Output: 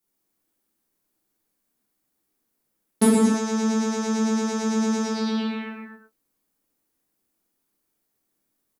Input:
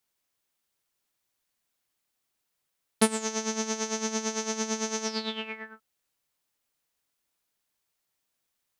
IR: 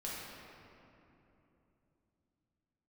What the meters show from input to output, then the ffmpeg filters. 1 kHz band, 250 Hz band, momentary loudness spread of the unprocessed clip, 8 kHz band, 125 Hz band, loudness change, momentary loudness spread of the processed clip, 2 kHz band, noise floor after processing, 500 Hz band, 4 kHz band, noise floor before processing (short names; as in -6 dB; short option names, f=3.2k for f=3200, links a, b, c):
+5.0 dB, +12.5 dB, 10 LU, -1.5 dB, n/a, +7.0 dB, 10 LU, +1.5 dB, -77 dBFS, +5.5 dB, -1.0 dB, -81 dBFS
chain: -filter_complex "[0:a]firequalizer=gain_entry='entry(130,0);entry(280,10);entry(560,-1);entry(2700,-7);entry(11000,3)':delay=0.05:min_phase=1[a];[1:a]atrim=start_sample=2205,afade=t=out:st=0.38:d=0.01,atrim=end_sample=17199[b];[a][b]afir=irnorm=-1:irlink=0,volume=4.5dB"